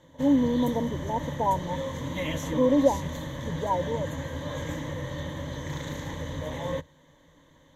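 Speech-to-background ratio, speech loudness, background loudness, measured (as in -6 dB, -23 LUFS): 7.0 dB, -27.0 LUFS, -34.0 LUFS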